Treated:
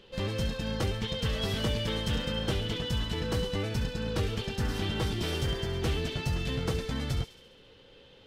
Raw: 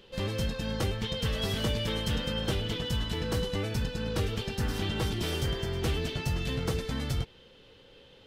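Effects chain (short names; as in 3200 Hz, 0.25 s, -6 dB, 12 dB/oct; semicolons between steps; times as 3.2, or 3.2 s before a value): high shelf 10000 Hz -7 dB; thin delay 68 ms, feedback 62%, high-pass 2900 Hz, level -10 dB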